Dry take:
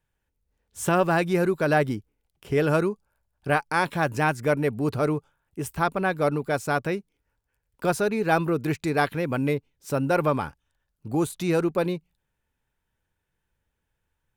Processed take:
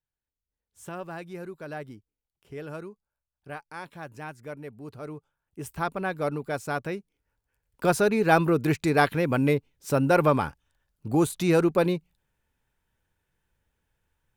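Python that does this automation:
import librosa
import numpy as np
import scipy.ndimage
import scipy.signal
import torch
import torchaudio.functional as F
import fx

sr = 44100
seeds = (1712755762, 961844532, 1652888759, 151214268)

y = fx.gain(x, sr, db=fx.line((4.96, -16.0), (5.7, -5.0), (6.94, -5.0), (8.0, 2.0)))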